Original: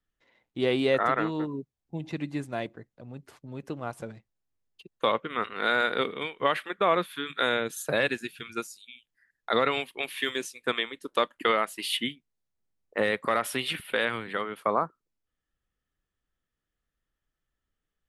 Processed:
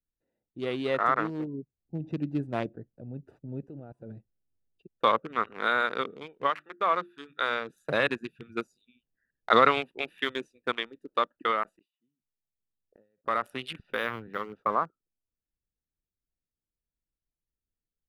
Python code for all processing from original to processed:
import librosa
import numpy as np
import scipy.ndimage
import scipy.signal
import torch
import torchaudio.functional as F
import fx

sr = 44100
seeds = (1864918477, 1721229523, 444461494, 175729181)

y = fx.level_steps(x, sr, step_db=22, at=(3.66, 4.1), fade=0.02)
y = fx.dmg_tone(y, sr, hz=1000.0, level_db=-70.0, at=(3.66, 4.1), fade=0.02)
y = fx.chain(y, sr, fx.lowpass(hz=2300.0, slope=6),
    fx.tilt_eq(slope=2.5),
    fx.hum_notches(base_hz=50, count=7), at=(6.5, 7.69))
y = fx.chain(y, sr, fx.gate_flip(shuts_db=-27.0, range_db=-36),
    fx.sustainer(db_per_s=130.0), at=(11.63, 13.26))
y = fx.chain(y, sr, fx.low_shelf(hz=70.0, db=10.5),
    fx.notch(hz=640.0, q=19.0),
    fx.resample_linear(factor=3), at=(13.78, 14.73))
y = fx.wiener(y, sr, points=41)
y = fx.dynamic_eq(y, sr, hz=1200.0, q=2.1, threshold_db=-43.0, ratio=4.0, max_db=8)
y = fx.rider(y, sr, range_db=10, speed_s=2.0)
y = y * librosa.db_to_amplitude(-5.0)